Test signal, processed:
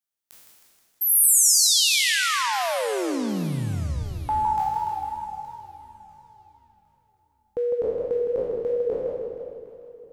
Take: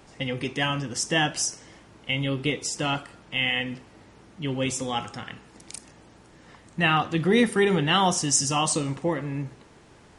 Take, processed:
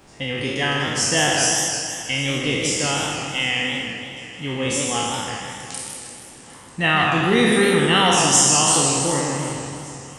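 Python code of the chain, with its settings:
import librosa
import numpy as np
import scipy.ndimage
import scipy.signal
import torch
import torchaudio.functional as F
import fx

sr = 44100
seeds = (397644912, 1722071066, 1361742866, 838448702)

y = fx.spec_trails(x, sr, decay_s=1.45)
y = fx.high_shelf(y, sr, hz=6700.0, db=5.0)
y = fx.echo_alternate(y, sr, ms=379, hz=800.0, feedback_pct=62, wet_db=-14)
y = fx.echo_warbled(y, sr, ms=158, feedback_pct=58, rate_hz=2.8, cents=160, wet_db=-6.0)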